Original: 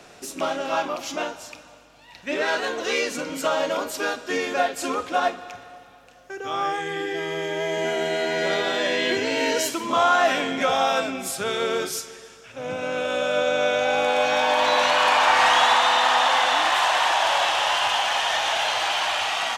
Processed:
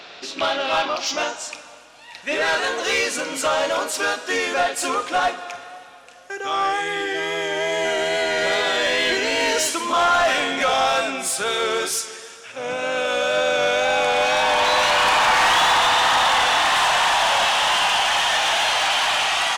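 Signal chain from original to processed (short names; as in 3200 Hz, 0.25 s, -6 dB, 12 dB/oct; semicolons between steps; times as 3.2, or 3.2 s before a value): low-pass sweep 4000 Hz -> 10000 Hz, 0.79–1.66; wow and flutter 28 cents; overdrive pedal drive 15 dB, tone 6300 Hz, clips at -8 dBFS; gain -2.5 dB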